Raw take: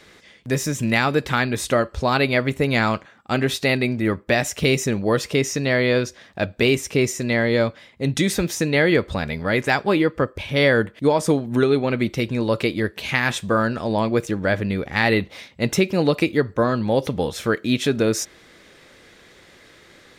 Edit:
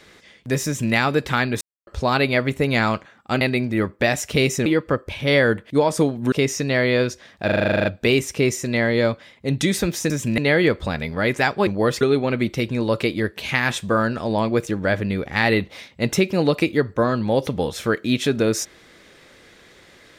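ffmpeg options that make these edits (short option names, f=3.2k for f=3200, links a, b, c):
-filter_complex "[0:a]asplit=20[a][b][c][d][e][f][g][h][i][j][k][l][m][n][o][p][q][r][s][t];[a]atrim=end=1.61,asetpts=PTS-STARTPTS,afade=t=out:st=1.606:d=0.004:c=hsin[u];[b]atrim=start=1.61:end=1.87,asetpts=PTS-STARTPTS,volume=0[v];[c]atrim=start=1.87:end=3.412,asetpts=PTS-STARTPTS,afade=t=in:d=0.004:c=hsin[w];[d]atrim=start=3.688:end=4.942[x];[e]atrim=start=9.948:end=11.612[y];[f]atrim=start=5.278:end=6.452[z];[g]atrim=start=6.408:end=6.452[aa];[h]atrim=start=6.408:end=6.452[ab];[i]atrim=start=6.408:end=6.452[ac];[j]atrim=start=6.408:end=6.452[ad];[k]atrim=start=6.408:end=6.452[ae];[l]atrim=start=6.408:end=6.452[af];[m]atrim=start=6.408:end=6.452[ag];[n]atrim=start=6.408:end=6.452[ah];[o]atrim=start=6.408:end=6.452[ai];[p]atrim=start=6.408:end=8.662[aj];[q]atrim=start=0.658:end=0.942[ak];[r]atrim=start=8.658:end=9.952[al];[s]atrim=start=4.938:end=5.282[am];[t]atrim=start=11.608[an];[u][v][w]concat=n=3:v=0:a=1[ao];[ao][x]acrossfade=d=0.004:c1=hsin:c2=hsin[ap];[ap][y]acrossfade=d=0.004:c1=hsin:c2=hsin[aq];[aq][z]acrossfade=d=0.004:c1=hsin:c2=hsin[ar];[ar][aa]acrossfade=d=0.004:c1=hsin:c2=hsin[as];[as][ab]acrossfade=d=0.004:c1=hsin:c2=hsin[at];[at][ac]acrossfade=d=0.004:c1=hsin:c2=hsin[au];[au][ad]acrossfade=d=0.004:c1=hsin:c2=hsin[av];[av][ae]acrossfade=d=0.004:c1=hsin:c2=hsin[aw];[aw][af]acrossfade=d=0.004:c1=hsin:c2=hsin[ax];[ax][ag]acrossfade=d=0.004:c1=hsin:c2=hsin[ay];[ay][ah]acrossfade=d=0.004:c1=hsin:c2=hsin[az];[az][ai]acrossfade=d=0.004:c1=hsin:c2=hsin[ba];[ba][aj]acrossfade=d=0.004:c1=hsin:c2=hsin[bb];[bb][ak]acrossfade=d=0.004:c1=hsin:c2=hsin[bc];[bc][al]acrossfade=d=0.004:c1=hsin:c2=hsin[bd];[bd][am]acrossfade=d=0.004:c1=hsin:c2=hsin[be];[be][an]acrossfade=d=0.004:c1=hsin:c2=hsin"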